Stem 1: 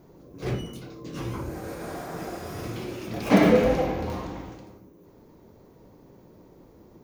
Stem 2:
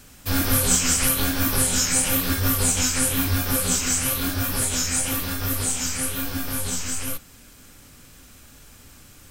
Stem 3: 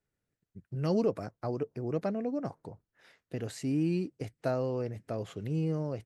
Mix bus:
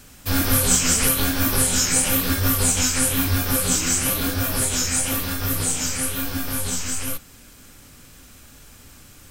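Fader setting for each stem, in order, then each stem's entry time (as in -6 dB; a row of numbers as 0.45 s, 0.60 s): -18.0 dB, +1.5 dB, -8.0 dB; 0.75 s, 0.00 s, 0.00 s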